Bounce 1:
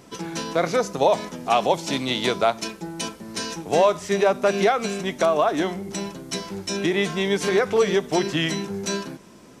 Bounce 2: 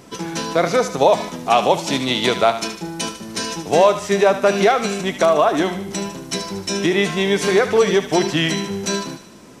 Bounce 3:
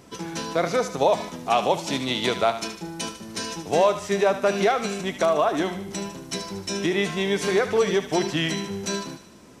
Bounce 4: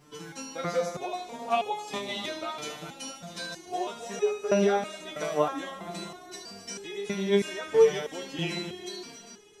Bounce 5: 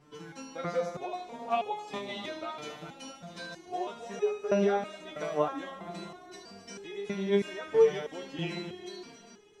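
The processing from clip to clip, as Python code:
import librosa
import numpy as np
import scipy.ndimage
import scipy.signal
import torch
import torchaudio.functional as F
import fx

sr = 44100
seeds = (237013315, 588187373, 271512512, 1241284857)

y1 = fx.echo_thinned(x, sr, ms=75, feedback_pct=55, hz=890.0, wet_db=-9.5)
y1 = y1 * 10.0 ** (4.5 / 20.0)
y2 = fx.peak_eq(y1, sr, hz=78.0, db=6.0, octaves=0.52)
y2 = y2 * 10.0 ** (-6.0 / 20.0)
y3 = fx.echo_heads(y2, sr, ms=133, heads='second and third', feedback_pct=56, wet_db=-14)
y3 = fx.resonator_held(y3, sr, hz=3.1, low_hz=150.0, high_hz=420.0)
y3 = y3 * 10.0 ** (5.0 / 20.0)
y4 = fx.lowpass(y3, sr, hz=2700.0, slope=6)
y4 = y4 * 10.0 ** (-2.5 / 20.0)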